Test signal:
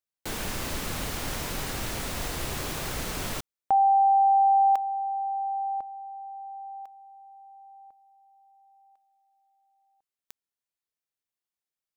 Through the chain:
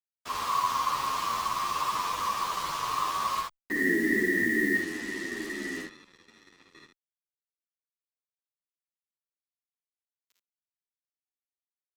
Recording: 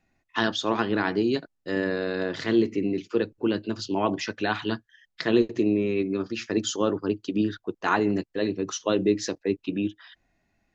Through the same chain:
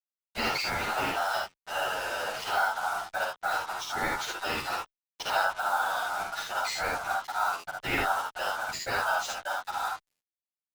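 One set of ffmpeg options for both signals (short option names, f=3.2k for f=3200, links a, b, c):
-filter_complex "[0:a]lowpass=f=5.6k:w=0.5412,lowpass=f=5.6k:w=1.3066,aemphasis=mode=reproduction:type=bsi,crystalizer=i=8:c=0,aeval=exprs='val(0)*sin(2*PI*1100*n/s)':c=same,afftfilt=real='hypot(re,im)*cos(2*PI*random(0))':imag='hypot(re,im)*sin(2*PI*random(1))':win_size=512:overlap=0.75,acrusher=bits=5:mix=0:aa=0.5,asplit=2[a][b];[b]aecho=0:1:39|53|75:0.2|0.668|0.596[c];[a][c]amix=inputs=2:normalize=0,asplit=2[d][e];[e]adelay=10.1,afreqshift=-2.2[f];[d][f]amix=inputs=2:normalize=1"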